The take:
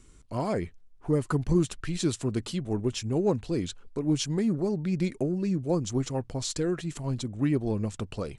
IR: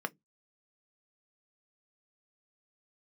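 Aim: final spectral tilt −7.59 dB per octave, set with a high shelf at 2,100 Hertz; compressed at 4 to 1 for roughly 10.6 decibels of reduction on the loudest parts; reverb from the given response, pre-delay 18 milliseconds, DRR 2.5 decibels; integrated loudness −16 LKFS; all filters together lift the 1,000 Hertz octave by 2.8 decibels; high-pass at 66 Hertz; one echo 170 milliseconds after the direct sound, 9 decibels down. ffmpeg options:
-filter_complex "[0:a]highpass=66,equalizer=frequency=1000:width_type=o:gain=5,highshelf=frequency=2100:gain=-6.5,acompressor=threshold=-33dB:ratio=4,aecho=1:1:170:0.355,asplit=2[link_01][link_02];[1:a]atrim=start_sample=2205,adelay=18[link_03];[link_02][link_03]afir=irnorm=-1:irlink=0,volume=-6.5dB[link_04];[link_01][link_04]amix=inputs=2:normalize=0,volume=18.5dB"

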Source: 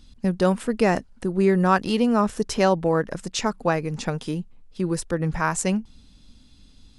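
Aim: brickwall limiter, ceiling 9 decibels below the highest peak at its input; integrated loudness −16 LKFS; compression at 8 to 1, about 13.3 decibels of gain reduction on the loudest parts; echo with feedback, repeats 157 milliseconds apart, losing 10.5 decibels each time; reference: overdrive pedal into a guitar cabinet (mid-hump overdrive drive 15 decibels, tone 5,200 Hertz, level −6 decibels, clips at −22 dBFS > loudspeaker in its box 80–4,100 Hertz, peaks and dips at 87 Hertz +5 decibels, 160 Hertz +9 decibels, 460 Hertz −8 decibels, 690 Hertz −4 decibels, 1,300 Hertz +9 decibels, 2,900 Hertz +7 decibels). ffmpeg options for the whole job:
ffmpeg -i in.wav -filter_complex "[0:a]acompressor=threshold=-28dB:ratio=8,alimiter=level_in=0.5dB:limit=-24dB:level=0:latency=1,volume=-0.5dB,aecho=1:1:157|314|471:0.299|0.0896|0.0269,asplit=2[link_01][link_02];[link_02]highpass=frequency=720:poles=1,volume=15dB,asoftclip=type=tanh:threshold=-22dB[link_03];[link_01][link_03]amix=inputs=2:normalize=0,lowpass=frequency=5200:poles=1,volume=-6dB,highpass=80,equalizer=frequency=87:width_type=q:width=4:gain=5,equalizer=frequency=160:width_type=q:width=4:gain=9,equalizer=frequency=460:width_type=q:width=4:gain=-8,equalizer=frequency=690:width_type=q:width=4:gain=-4,equalizer=frequency=1300:width_type=q:width=4:gain=9,equalizer=frequency=2900:width_type=q:width=4:gain=7,lowpass=frequency=4100:width=0.5412,lowpass=frequency=4100:width=1.3066,volume=15.5dB" out.wav

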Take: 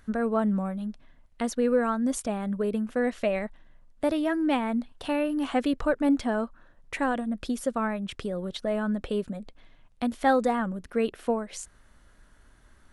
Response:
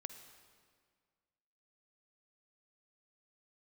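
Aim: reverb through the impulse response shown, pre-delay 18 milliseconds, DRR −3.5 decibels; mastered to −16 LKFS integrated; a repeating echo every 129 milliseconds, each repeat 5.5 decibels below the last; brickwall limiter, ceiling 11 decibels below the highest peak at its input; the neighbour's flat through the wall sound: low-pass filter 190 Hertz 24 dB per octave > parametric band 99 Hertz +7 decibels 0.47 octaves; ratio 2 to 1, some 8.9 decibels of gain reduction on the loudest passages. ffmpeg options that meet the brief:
-filter_complex "[0:a]acompressor=threshold=-35dB:ratio=2,alimiter=level_in=5.5dB:limit=-24dB:level=0:latency=1,volume=-5.5dB,aecho=1:1:129|258|387|516|645|774|903:0.531|0.281|0.149|0.079|0.0419|0.0222|0.0118,asplit=2[link_01][link_02];[1:a]atrim=start_sample=2205,adelay=18[link_03];[link_02][link_03]afir=irnorm=-1:irlink=0,volume=7dB[link_04];[link_01][link_04]amix=inputs=2:normalize=0,lowpass=frequency=190:width=0.5412,lowpass=frequency=190:width=1.3066,equalizer=frequency=99:width_type=o:width=0.47:gain=7,volume=26dB"

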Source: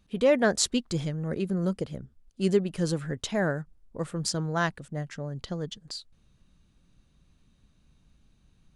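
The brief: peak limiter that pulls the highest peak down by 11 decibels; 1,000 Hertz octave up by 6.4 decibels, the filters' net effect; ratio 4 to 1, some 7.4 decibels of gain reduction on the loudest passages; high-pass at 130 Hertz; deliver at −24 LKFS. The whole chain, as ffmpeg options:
ffmpeg -i in.wav -af "highpass=130,equalizer=frequency=1000:width_type=o:gain=8.5,acompressor=threshold=-24dB:ratio=4,volume=10dB,alimiter=limit=-11.5dB:level=0:latency=1" out.wav

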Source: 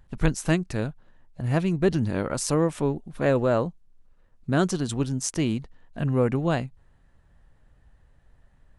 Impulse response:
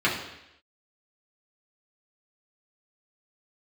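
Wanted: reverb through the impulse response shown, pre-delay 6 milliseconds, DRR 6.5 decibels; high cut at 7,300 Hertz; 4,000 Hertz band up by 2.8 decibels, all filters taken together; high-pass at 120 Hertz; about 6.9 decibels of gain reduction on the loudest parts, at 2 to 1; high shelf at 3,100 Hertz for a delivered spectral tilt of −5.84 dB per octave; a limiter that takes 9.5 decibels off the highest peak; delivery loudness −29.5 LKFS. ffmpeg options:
-filter_complex "[0:a]highpass=120,lowpass=7300,highshelf=frequency=3100:gain=-4,equalizer=frequency=4000:width_type=o:gain=7.5,acompressor=threshold=-30dB:ratio=2,alimiter=limit=-23.5dB:level=0:latency=1,asplit=2[link_01][link_02];[1:a]atrim=start_sample=2205,adelay=6[link_03];[link_02][link_03]afir=irnorm=-1:irlink=0,volume=-22dB[link_04];[link_01][link_04]amix=inputs=2:normalize=0,volume=4dB"

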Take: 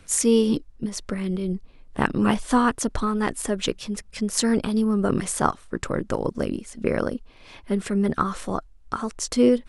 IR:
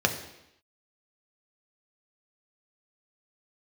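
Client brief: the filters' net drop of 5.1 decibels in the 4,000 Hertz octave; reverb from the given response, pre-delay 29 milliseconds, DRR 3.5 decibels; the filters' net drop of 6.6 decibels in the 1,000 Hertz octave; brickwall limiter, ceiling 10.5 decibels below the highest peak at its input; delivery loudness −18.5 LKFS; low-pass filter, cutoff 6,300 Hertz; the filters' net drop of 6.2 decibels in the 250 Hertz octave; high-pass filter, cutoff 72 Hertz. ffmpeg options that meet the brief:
-filter_complex "[0:a]highpass=72,lowpass=6300,equalizer=frequency=250:width_type=o:gain=-7,equalizer=frequency=1000:width_type=o:gain=-8,equalizer=frequency=4000:width_type=o:gain=-5.5,alimiter=limit=-19dB:level=0:latency=1,asplit=2[link_01][link_02];[1:a]atrim=start_sample=2205,adelay=29[link_03];[link_02][link_03]afir=irnorm=-1:irlink=0,volume=-16.5dB[link_04];[link_01][link_04]amix=inputs=2:normalize=0,volume=11dB"

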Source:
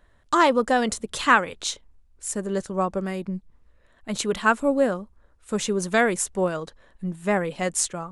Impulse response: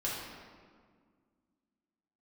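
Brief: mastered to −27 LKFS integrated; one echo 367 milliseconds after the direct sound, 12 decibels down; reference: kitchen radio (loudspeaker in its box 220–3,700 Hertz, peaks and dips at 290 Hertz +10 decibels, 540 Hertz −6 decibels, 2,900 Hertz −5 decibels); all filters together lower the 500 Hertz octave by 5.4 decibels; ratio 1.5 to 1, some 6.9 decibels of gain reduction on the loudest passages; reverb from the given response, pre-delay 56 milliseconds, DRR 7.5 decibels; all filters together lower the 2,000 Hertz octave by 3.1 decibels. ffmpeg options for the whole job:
-filter_complex "[0:a]equalizer=frequency=500:width_type=o:gain=-4,equalizer=frequency=2000:width_type=o:gain=-3.5,acompressor=threshold=-35dB:ratio=1.5,aecho=1:1:367:0.251,asplit=2[link_01][link_02];[1:a]atrim=start_sample=2205,adelay=56[link_03];[link_02][link_03]afir=irnorm=-1:irlink=0,volume=-12.5dB[link_04];[link_01][link_04]amix=inputs=2:normalize=0,highpass=220,equalizer=frequency=290:width_type=q:width=4:gain=10,equalizer=frequency=540:width_type=q:width=4:gain=-6,equalizer=frequency=2900:width_type=q:width=4:gain=-5,lowpass=frequency=3700:width=0.5412,lowpass=frequency=3700:width=1.3066,volume=4.5dB"

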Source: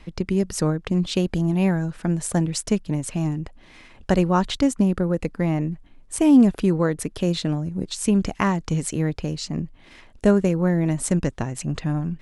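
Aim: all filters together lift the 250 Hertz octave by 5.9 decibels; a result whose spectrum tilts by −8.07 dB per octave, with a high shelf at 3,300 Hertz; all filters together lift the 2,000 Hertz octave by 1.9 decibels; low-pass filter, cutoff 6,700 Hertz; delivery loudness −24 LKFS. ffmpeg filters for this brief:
ffmpeg -i in.wav -af "lowpass=6700,equalizer=frequency=250:width_type=o:gain=8,equalizer=frequency=2000:width_type=o:gain=5,highshelf=frequency=3300:gain=-9,volume=-6dB" out.wav

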